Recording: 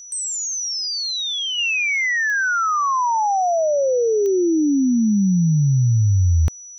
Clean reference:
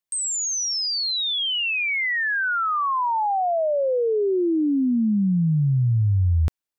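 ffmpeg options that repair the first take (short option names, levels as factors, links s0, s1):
-af "adeclick=t=4,bandreject=f=5900:w=30,asetnsamples=n=441:p=0,asendcmd='1.58 volume volume -3.5dB',volume=1"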